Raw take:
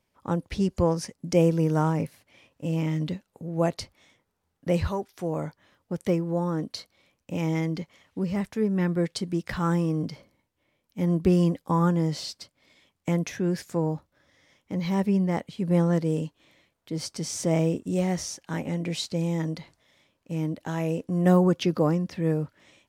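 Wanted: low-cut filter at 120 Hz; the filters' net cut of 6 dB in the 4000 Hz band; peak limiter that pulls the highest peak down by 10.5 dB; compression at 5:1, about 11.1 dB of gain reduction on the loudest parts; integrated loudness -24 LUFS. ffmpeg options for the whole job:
-af "highpass=120,equalizer=f=4k:t=o:g=-8,acompressor=threshold=-28dB:ratio=5,volume=14.5dB,alimiter=limit=-14dB:level=0:latency=1"

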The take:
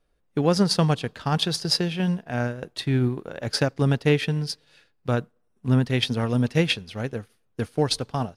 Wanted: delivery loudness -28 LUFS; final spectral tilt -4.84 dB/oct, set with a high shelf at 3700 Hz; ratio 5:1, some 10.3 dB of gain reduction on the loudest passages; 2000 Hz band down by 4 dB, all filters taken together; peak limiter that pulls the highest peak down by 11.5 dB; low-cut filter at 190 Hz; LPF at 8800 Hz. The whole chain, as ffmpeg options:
-af "highpass=190,lowpass=8.8k,equalizer=f=2k:t=o:g=-4,highshelf=f=3.7k:g=-4.5,acompressor=threshold=-28dB:ratio=5,volume=10dB,alimiter=limit=-16.5dB:level=0:latency=1"

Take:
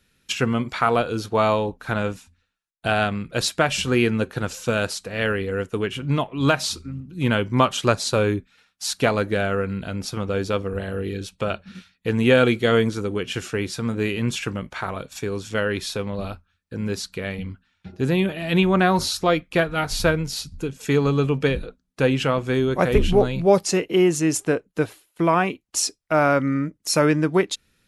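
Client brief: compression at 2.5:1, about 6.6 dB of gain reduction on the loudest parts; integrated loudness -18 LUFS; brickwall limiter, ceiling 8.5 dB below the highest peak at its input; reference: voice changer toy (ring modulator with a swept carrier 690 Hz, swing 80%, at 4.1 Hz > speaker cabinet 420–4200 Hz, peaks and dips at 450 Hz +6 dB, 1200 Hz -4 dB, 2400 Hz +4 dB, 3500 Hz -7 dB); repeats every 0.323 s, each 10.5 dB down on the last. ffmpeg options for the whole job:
-af "acompressor=threshold=-21dB:ratio=2.5,alimiter=limit=-16dB:level=0:latency=1,aecho=1:1:323|646|969:0.299|0.0896|0.0269,aeval=exprs='val(0)*sin(2*PI*690*n/s+690*0.8/4.1*sin(2*PI*4.1*n/s))':c=same,highpass=420,equalizer=f=450:t=q:w=4:g=6,equalizer=f=1.2k:t=q:w=4:g=-4,equalizer=f=2.4k:t=q:w=4:g=4,equalizer=f=3.5k:t=q:w=4:g=-7,lowpass=f=4.2k:w=0.5412,lowpass=f=4.2k:w=1.3066,volume=13.5dB"

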